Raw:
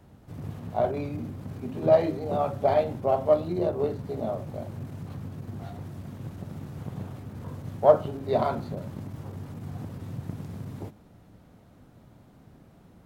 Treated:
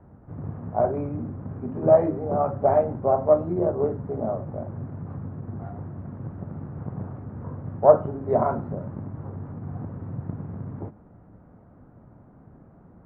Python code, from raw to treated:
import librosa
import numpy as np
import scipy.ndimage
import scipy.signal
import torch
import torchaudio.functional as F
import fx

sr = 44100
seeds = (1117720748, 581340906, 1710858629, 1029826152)

y = scipy.signal.sosfilt(scipy.signal.butter(4, 1500.0, 'lowpass', fs=sr, output='sos'), x)
y = F.gain(torch.from_numpy(y), 3.0).numpy()